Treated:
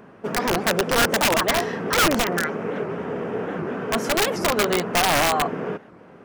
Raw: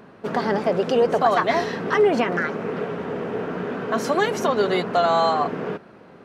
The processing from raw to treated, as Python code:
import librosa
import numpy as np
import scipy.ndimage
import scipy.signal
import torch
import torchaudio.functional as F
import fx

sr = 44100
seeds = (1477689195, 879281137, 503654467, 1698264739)

y = fx.peak_eq(x, sr, hz=4100.0, db=-8.5, octaves=0.44)
y = (np.mod(10.0 ** (13.0 / 20.0) * y + 1.0, 2.0) - 1.0) / 10.0 ** (13.0 / 20.0)
y = fx.record_warp(y, sr, rpm=78.0, depth_cents=250.0)